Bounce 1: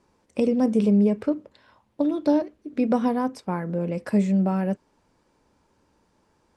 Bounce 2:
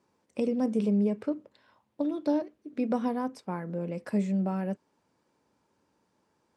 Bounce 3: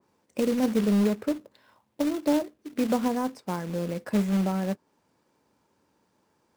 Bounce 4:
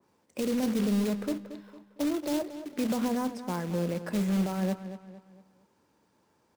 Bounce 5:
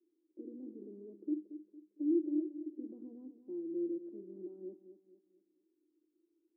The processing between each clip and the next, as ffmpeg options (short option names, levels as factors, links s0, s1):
-af "highpass=110,volume=0.473"
-af "acrusher=bits=3:mode=log:mix=0:aa=0.000001,adynamicequalizer=threshold=0.00355:dfrequency=2100:dqfactor=0.7:tfrequency=2100:tqfactor=0.7:attack=5:release=100:ratio=0.375:range=2:mode=cutabove:tftype=highshelf,volume=1.41"
-filter_complex "[0:a]acrossover=split=130|2700[s0][s1][s2];[s1]alimiter=limit=0.0708:level=0:latency=1:release=20[s3];[s0][s3][s2]amix=inputs=3:normalize=0,asplit=2[s4][s5];[s5]adelay=228,lowpass=f=4800:p=1,volume=0.251,asplit=2[s6][s7];[s7]adelay=228,lowpass=f=4800:p=1,volume=0.41,asplit=2[s8][s9];[s9]adelay=228,lowpass=f=4800:p=1,volume=0.41,asplit=2[s10][s11];[s11]adelay=228,lowpass=f=4800:p=1,volume=0.41[s12];[s4][s6][s8][s10][s12]amix=inputs=5:normalize=0"
-af "asuperpass=centerf=330:order=4:qfactor=6.2,volume=1.33"